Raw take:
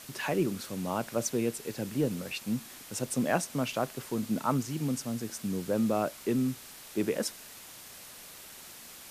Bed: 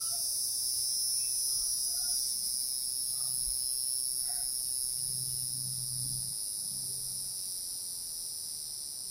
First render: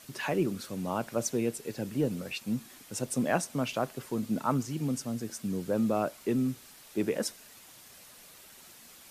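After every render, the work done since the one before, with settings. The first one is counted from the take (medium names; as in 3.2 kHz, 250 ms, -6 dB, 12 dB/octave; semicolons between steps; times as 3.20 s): noise reduction 6 dB, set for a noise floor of -49 dBFS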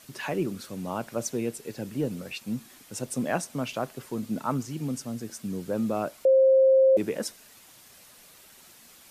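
6.25–6.97 s: bleep 530 Hz -15 dBFS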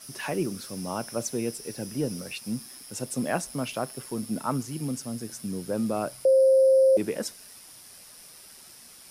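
add bed -12 dB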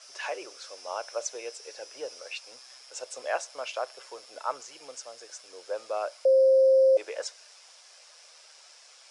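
elliptic band-pass 530–7200 Hz, stop band 40 dB; band-stop 1.9 kHz, Q 20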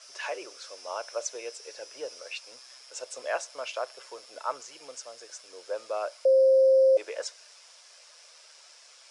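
band-stop 780 Hz, Q 12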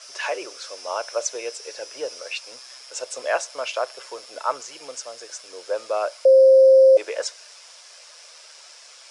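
trim +7.5 dB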